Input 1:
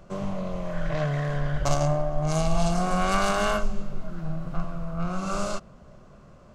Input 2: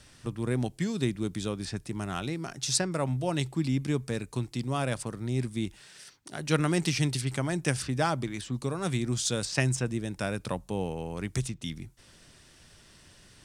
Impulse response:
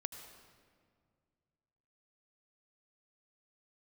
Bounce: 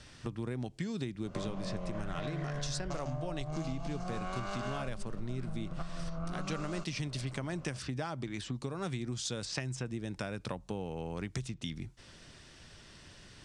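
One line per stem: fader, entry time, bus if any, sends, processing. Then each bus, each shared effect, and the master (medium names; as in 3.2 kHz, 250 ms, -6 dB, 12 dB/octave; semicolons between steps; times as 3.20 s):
+2.0 dB, 1.25 s, no send, compression 6:1, threshold -32 dBFS, peak gain reduction 14.5 dB
+2.0 dB, 0.00 s, no send, compression 1.5:1, threshold -39 dBFS, peak gain reduction 7.5 dB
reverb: none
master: low-pass 6.4 kHz 12 dB/octave; compression, threshold -33 dBFS, peak gain reduction 10 dB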